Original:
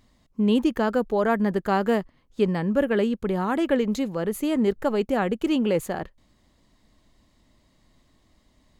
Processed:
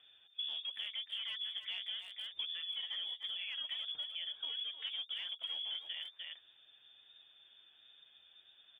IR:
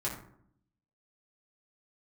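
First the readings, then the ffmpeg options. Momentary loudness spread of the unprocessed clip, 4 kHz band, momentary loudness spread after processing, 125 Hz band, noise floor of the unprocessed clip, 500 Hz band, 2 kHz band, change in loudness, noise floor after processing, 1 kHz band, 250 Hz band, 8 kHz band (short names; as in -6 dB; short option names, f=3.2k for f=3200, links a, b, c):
5 LU, +5.0 dB, 15 LU, under -40 dB, -64 dBFS, under -40 dB, -15.5 dB, -15.5 dB, -66 dBFS, -34.0 dB, under -40 dB, under -25 dB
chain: -filter_complex "[0:a]aresample=16000,asoftclip=type=hard:threshold=-18.5dB,aresample=44100,lowpass=f=3.1k:t=q:w=0.5098,lowpass=f=3.1k:t=q:w=0.6013,lowpass=f=3.1k:t=q:w=0.9,lowpass=f=3.1k:t=q:w=2.563,afreqshift=-3600,flanger=delay=6.6:depth=5:regen=24:speed=1.5:shape=sinusoidal,asplit=2[a][b];[b]adelay=300,highpass=300,lowpass=3.4k,asoftclip=type=hard:threshold=-22dB,volume=-11dB[c];[a][c]amix=inputs=2:normalize=0,acrossover=split=1400[d][e];[d]aeval=exprs='0.0106*(abs(mod(val(0)/0.0106+3,4)-2)-1)':c=same[f];[f][e]amix=inputs=2:normalize=0,acompressor=threshold=-42dB:ratio=6,volume=1.5dB"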